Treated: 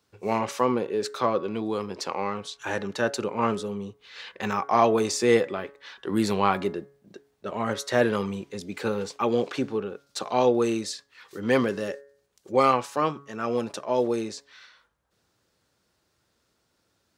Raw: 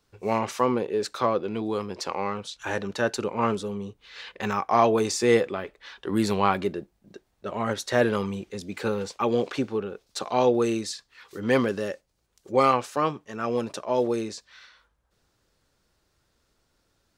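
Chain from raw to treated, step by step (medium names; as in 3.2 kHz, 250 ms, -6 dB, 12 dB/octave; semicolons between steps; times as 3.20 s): high-pass 92 Hz; de-hum 140.2 Hz, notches 15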